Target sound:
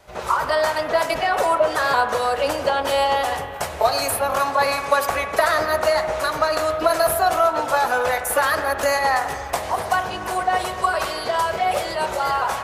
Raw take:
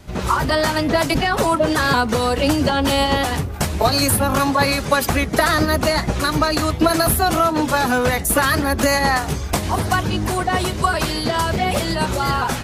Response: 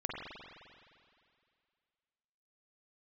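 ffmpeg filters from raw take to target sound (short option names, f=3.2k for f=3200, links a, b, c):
-filter_complex "[0:a]lowshelf=f=380:t=q:w=1.5:g=-13,asplit=2[a][b];[1:a]atrim=start_sample=2205,lowpass=2.8k[c];[b][c]afir=irnorm=-1:irlink=0,volume=-6dB[d];[a][d]amix=inputs=2:normalize=0,volume=-5.5dB"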